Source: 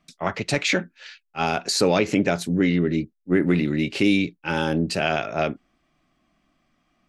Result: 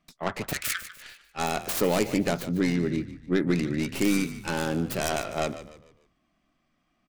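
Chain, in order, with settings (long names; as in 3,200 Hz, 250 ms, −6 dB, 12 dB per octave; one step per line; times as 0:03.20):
stylus tracing distortion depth 0.48 ms
0:00.53–0:00.95: Butterworth high-pass 1,200 Hz 96 dB per octave
on a send: echo with shifted repeats 148 ms, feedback 39%, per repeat −46 Hz, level −13.5 dB
on the sum: level −5 dB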